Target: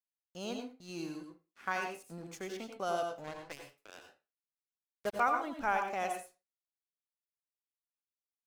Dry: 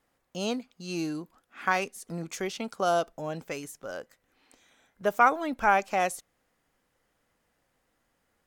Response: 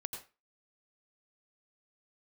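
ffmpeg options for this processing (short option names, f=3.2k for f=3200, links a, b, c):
-filter_complex "[0:a]agate=range=-33dB:threshold=-51dB:ratio=3:detection=peak,aeval=exprs='sgn(val(0))*max(abs(val(0))-0.00376,0)':c=same,asettb=1/sr,asplit=3[a][b][c];[a]atrim=end=3.244[d];[b]atrim=start=3.24:end=5.2,asetpts=PTS-STARTPTS,afade=t=in:d=0.004:c=qsin,afade=t=out:st=1.956:d=0.004:c=qsin,acrusher=bits=4:mix=0:aa=0.5[e];[c]atrim=start=5.196[f];[d][e]acrossfade=d=0.004:c1=hsin:c2=qsin[g];[g][f]acrossfade=d=0.004:c1=qsin:c2=hsin[h];[1:a]atrim=start_sample=2205[i];[h][i]afir=irnorm=-1:irlink=0,volume=-7dB"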